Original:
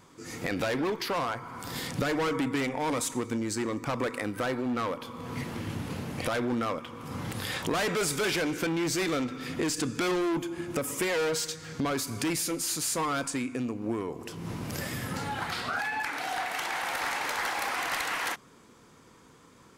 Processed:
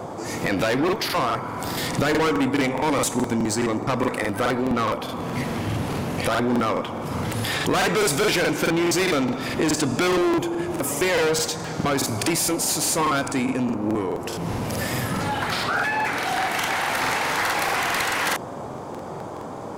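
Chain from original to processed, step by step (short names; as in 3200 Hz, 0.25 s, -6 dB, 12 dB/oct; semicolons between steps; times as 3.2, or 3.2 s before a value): in parallel at -5 dB: soft clip -37.5 dBFS, distortion -7 dB; on the sum: band noise 89–950 Hz -40 dBFS; crackling interface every 0.21 s, samples 2048, repeat, from 0.84; gain +6 dB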